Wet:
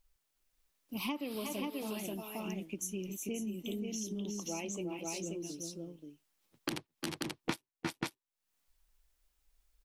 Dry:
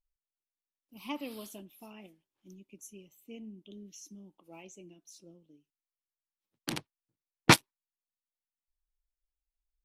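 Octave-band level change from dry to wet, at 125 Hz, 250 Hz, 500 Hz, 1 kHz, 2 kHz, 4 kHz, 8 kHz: -6.0 dB, +0.5 dB, +1.5 dB, -8.5 dB, -9.5 dB, -7.0 dB, -0.5 dB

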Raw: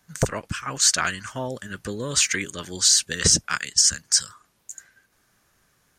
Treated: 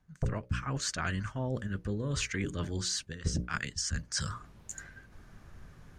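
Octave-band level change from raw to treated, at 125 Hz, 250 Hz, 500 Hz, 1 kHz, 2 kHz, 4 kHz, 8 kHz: -0.5 dB, -3.0 dB, -8.0 dB, -9.0 dB, -10.0 dB, -15.5 dB, -18.5 dB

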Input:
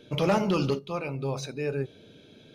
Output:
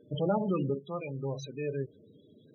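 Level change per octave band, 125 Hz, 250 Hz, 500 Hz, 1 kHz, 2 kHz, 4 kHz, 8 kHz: -4.0 dB, -4.0 dB, -4.5 dB, -6.0 dB, -11.0 dB, -11.0 dB, -12.0 dB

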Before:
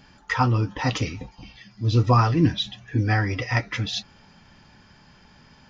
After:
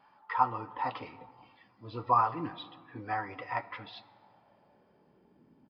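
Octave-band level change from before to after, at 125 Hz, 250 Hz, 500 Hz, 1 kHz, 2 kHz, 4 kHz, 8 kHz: -25.0 dB, -18.0 dB, -11.0 dB, -2.5 dB, -13.0 dB, -19.0 dB, no reading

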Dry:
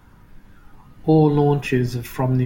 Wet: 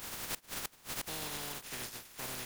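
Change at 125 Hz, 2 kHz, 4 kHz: -32.5 dB, -10.0 dB, -1.5 dB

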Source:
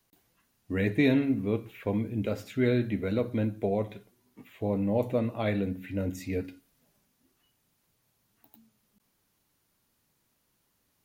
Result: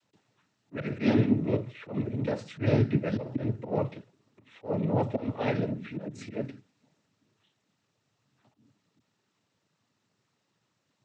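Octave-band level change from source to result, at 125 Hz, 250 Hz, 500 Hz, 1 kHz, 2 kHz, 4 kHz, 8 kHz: +2.0 dB, -1.0 dB, -1.5 dB, +2.5 dB, -3.5 dB, -2.0 dB, no reading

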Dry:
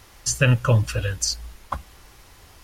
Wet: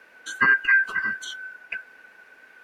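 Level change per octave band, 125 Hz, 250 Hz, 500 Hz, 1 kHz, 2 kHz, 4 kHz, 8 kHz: under -30 dB, -12.0 dB, -18.0 dB, 0.0 dB, +11.5 dB, -8.5 dB, -17.5 dB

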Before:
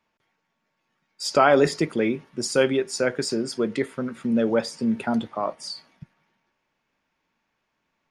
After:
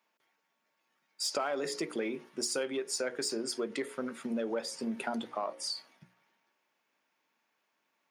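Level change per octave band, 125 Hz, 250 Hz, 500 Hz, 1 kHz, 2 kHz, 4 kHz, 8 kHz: -20.0 dB, -13.0 dB, -12.5 dB, -13.0 dB, -12.0 dB, -5.0 dB, -3.0 dB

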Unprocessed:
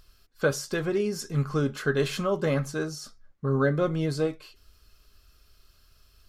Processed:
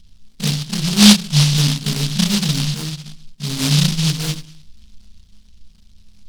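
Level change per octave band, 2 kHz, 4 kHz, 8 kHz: +6.0 dB, +23.0 dB, +19.0 dB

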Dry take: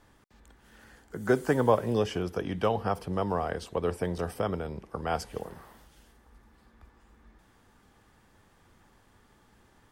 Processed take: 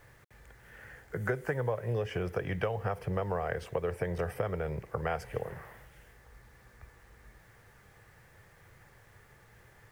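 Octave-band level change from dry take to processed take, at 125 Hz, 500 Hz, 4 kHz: -0.5 dB, -4.5 dB, -8.0 dB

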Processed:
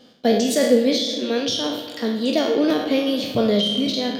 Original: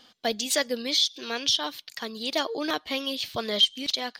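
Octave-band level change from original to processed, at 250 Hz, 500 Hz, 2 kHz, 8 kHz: +15.0 dB, +12.0 dB, +1.5 dB, +0.5 dB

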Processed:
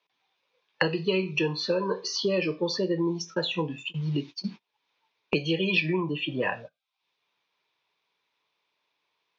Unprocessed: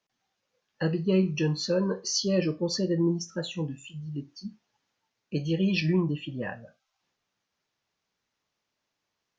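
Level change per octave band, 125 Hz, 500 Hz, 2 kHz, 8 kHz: -3.5 dB, +2.0 dB, +8.0 dB, no reading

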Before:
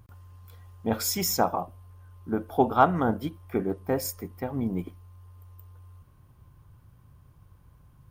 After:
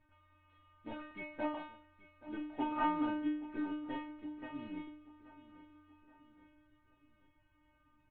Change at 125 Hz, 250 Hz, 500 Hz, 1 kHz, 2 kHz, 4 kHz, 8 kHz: -25.5 dB, -8.0 dB, -18.0 dB, -12.5 dB, -8.0 dB, -18.5 dB, under -40 dB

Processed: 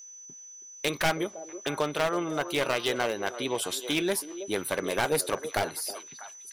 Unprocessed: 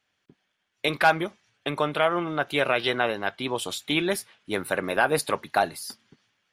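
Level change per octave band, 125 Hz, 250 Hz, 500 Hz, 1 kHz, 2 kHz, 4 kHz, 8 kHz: -3.0 dB, -2.0 dB, -2.5 dB, -6.0 dB, -5.5 dB, -2.0 dB, +4.5 dB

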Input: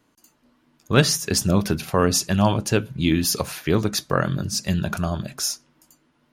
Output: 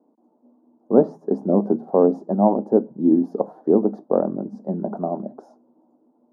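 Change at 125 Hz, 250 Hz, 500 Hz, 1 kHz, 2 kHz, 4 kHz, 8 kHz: -9.5 dB, +3.0 dB, +5.5 dB, 0.0 dB, under -25 dB, under -40 dB, under -40 dB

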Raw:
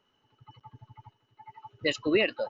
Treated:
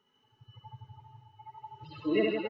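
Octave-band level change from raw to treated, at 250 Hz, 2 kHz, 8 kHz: -1.0 dB, -8.5 dB, no reading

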